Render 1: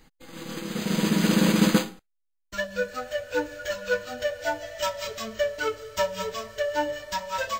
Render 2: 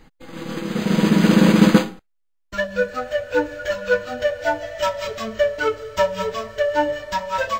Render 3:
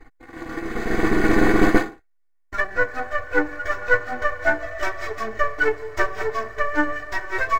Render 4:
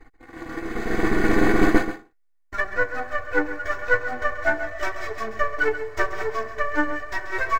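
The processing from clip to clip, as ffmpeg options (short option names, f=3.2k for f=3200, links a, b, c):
-af "highshelf=f=3.9k:g=-11.5,volume=7.5dB"
-af "aeval=exprs='if(lt(val(0),0),0.251*val(0),val(0))':c=same,highshelf=f=2.4k:t=q:w=3:g=-6,aecho=1:1:2.7:0.89"
-af "aecho=1:1:133:0.251,volume=-2dB"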